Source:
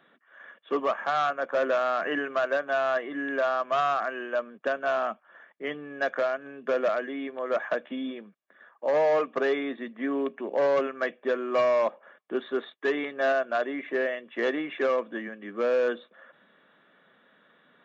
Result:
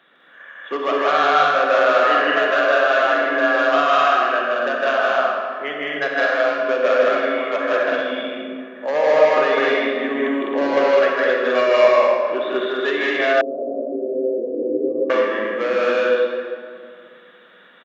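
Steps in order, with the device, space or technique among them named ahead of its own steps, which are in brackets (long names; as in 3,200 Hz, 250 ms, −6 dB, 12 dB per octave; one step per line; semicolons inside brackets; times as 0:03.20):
stadium PA (high-pass filter 230 Hz 6 dB per octave; parametric band 3,300 Hz +6 dB 2.1 octaves; loudspeakers that aren't time-aligned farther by 54 metres −1 dB, 70 metres −1 dB, 91 metres −5 dB; convolution reverb RT60 2.1 s, pre-delay 37 ms, DRR 1 dB)
0:13.41–0:15.10: Butterworth low-pass 520 Hz 36 dB per octave
level +2.5 dB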